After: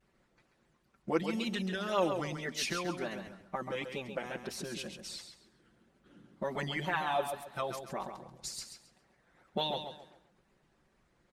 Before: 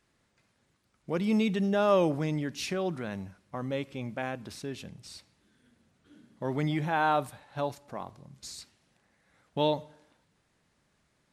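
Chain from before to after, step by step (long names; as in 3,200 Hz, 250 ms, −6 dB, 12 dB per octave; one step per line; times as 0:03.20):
comb filter 5.5 ms, depth 99%
harmonic and percussive parts rebalanced harmonic −16 dB
in parallel at +0.5 dB: downward compressor, threshold −47 dBFS, peak gain reduction 21 dB
on the sum: tape wow and flutter 110 cents
on a send: repeating echo 135 ms, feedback 32%, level −7.5 dB
on the sum: one half of a high-frequency compander decoder only
level −1 dB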